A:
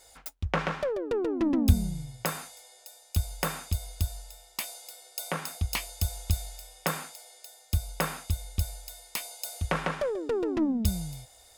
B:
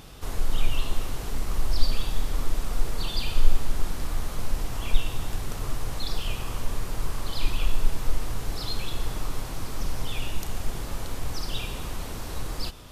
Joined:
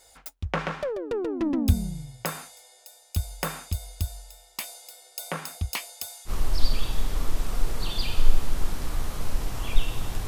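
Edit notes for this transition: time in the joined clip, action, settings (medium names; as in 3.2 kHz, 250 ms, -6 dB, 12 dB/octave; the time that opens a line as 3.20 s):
A
5.69–6.31 s: high-pass 200 Hz -> 1.3 kHz
6.28 s: go over to B from 1.46 s, crossfade 0.06 s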